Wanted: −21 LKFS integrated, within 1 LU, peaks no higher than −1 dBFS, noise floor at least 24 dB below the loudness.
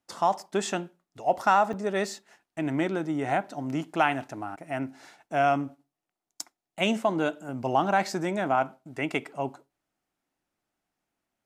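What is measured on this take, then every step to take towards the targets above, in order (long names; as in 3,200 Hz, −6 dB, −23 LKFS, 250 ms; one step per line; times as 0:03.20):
number of dropouts 1; longest dropout 5.6 ms; integrated loudness −28.0 LKFS; sample peak −9.0 dBFS; target loudness −21.0 LKFS
→ repair the gap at 0:01.73, 5.6 ms
level +7 dB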